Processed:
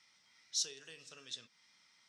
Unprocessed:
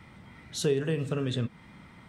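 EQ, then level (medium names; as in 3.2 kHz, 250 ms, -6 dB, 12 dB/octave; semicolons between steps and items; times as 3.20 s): band-pass filter 5.5 kHz, Q 4.9; +7.5 dB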